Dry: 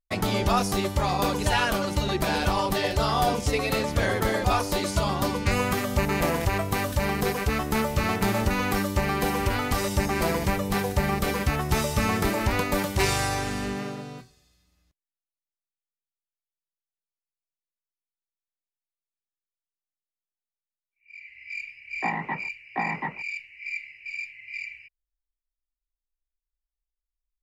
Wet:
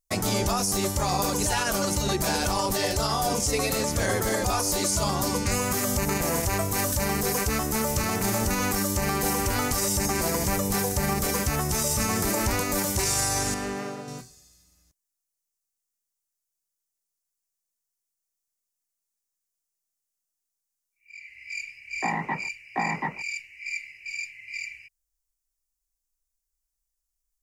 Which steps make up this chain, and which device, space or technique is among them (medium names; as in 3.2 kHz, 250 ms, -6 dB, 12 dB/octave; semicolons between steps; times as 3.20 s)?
13.54–14.08 s: tone controls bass -8 dB, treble -11 dB; over-bright horn tweeter (resonant high shelf 4.7 kHz +10 dB, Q 1.5; peak limiter -17.5 dBFS, peak gain reduction 11 dB); trim +2 dB